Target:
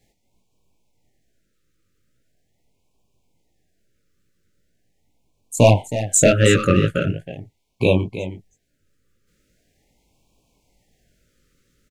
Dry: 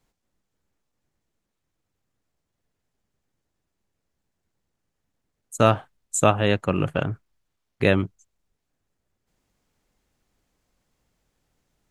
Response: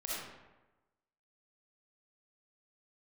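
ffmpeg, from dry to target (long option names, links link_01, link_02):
-filter_complex "[0:a]asplit=2[link_01][link_02];[link_02]acompressor=threshold=-35dB:ratio=6,volume=2.5dB[link_03];[link_01][link_03]amix=inputs=2:normalize=0,flanger=delay=16.5:depth=6.7:speed=2.3,asettb=1/sr,asplit=3[link_04][link_05][link_06];[link_04]atrim=end=5.574[link_07];[link_05]atrim=start=5.57:end=6.8,asetpts=PTS-STARTPTS,afade=type=in:duration=0.004:curve=qsin,afade=type=out:start_time=1.226:duration=0.004:curve=qsin,aeval=exprs='0.668*(cos(1*acos(clip(val(0)/0.668,-1,1)))-cos(1*PI/2))+0.119*(cos(5*acos(clip(val(0)/0.668,-1,1)))-cos(5*PI/2))':channel_layout=same[link_08];[link_06]atrim=start=6.796[link_09];[link_07][link_08]acrossfade=duration=0.004:curve1=hsin:curve2=qsin[link_10];[link_10][link_09]acrossfade=duration=0.004:curve1=qsin:curve2=hsin,aecho=1:1:319:0.251,afftfilt=real='re*(1-between(b*sr/1024,800*pow(1600/800,0.5+0.5*sin(2*PI*0.41*pts/sr))/1.41,800*pow(1600/800,0.5+0.5*sin(2*PI*0.41*pts/sr))*1.41))':imag='im*(1-between(b*sr/1024,800*pow(1600/800,0.5+0.5*sin(2*PI*0.41*pts/sr))/1.41,800*pow(1600/800,0.5+0.5*sin(2*PI*0.41*pts/sr))*1.41))':win_size=1024:overlap=0.75,volume=4.5dB"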